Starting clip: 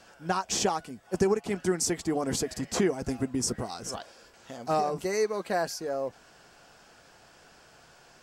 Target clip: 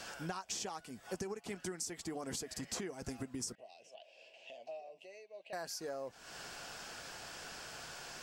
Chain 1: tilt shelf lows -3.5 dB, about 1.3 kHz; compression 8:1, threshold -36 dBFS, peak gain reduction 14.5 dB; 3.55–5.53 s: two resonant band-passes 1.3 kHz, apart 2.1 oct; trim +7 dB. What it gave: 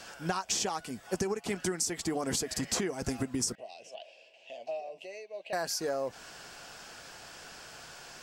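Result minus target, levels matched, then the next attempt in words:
compression: peak gain reduction -9.5 dB
tilt shelf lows -3.5 dB, about 1.3 kHz; compression 8:1, threshold -47 dBFS, peak gain reduction 24 dB; 3.55–5.53 s: two resonant band-passes 1.3 kHz, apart 2.1 oct; trim +7 dB

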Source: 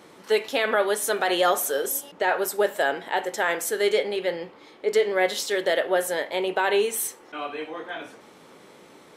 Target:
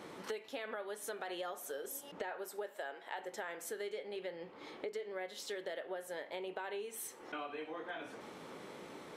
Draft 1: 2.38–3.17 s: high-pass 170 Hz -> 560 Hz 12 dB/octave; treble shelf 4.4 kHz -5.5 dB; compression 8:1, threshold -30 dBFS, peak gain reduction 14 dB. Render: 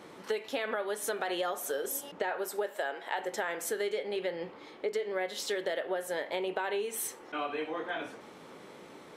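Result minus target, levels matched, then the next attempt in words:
compression: peak gain reduction -9 dB
2.38–3.17 s: high-pass 170 Hz -> 560 Hz 12 dB/octave; treble shelf 4.4 kHz -5.5 dB; compression 8:1, threshold -40.5 dBFS, peak gain reduction 23 dB

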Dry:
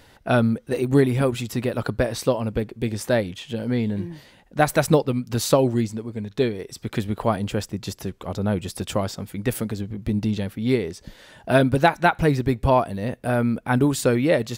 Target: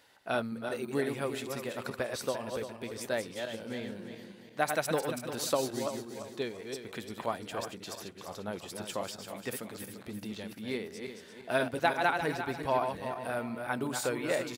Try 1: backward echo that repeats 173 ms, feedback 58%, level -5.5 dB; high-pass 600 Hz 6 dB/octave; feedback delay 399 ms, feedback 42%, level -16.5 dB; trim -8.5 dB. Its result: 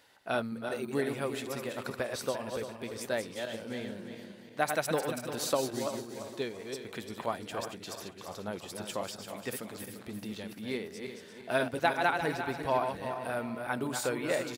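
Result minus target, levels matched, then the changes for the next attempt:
echo-to-direct +11 dB
change: feedback delay 399 ms, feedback 42%, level -27.5 dB

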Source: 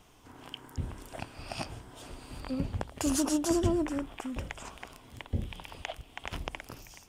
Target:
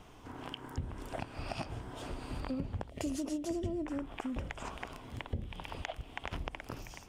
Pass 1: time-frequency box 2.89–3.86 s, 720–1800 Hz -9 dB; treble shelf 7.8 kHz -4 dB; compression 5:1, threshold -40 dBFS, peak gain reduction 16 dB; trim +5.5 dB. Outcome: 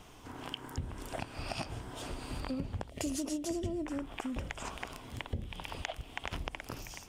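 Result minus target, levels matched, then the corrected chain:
8 kHz band +5.5 dB
time-frequency box 2.89–3.86 s, 720–1800 Hz -9 dB; treble shelf 7.8 kHz -4 dB; compression 5:1, threshold -40 dBFS, peak gain reduction 16 dB; treble shelf 3.2 kHz -7.5 dB; trim +5.5 dB

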